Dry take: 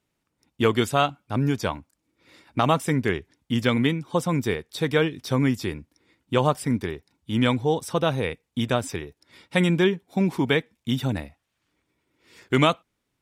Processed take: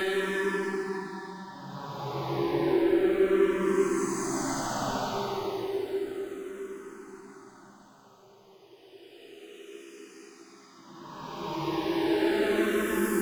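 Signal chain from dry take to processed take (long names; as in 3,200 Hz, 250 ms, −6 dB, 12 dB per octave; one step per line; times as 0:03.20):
pitch shift by two crossfaded delay taps +5 semitones
high-pass filter 140 Hz 24 dB per octave
parametric band 350 Hz +14.5 dB 0.73 octaves
brickwall limiter −12 dBFS, peak gain reduction 11 dB
soft clipping −26 dBFS, distortion −7 dB
floating-point word with a short mantissa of 4 bits
extreme stretch with random phases 7.4×, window 0.25 s, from 0:01.02
feedback delay with all-pass diffusion 687 ms, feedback 64%, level −15 dB
convolution reverb RT60 4.2 s, pre-delay 23 ms, DRR 6.5 dB
frequency shifter mixed with the dry sound −0.32 Hz
level +3.5 dB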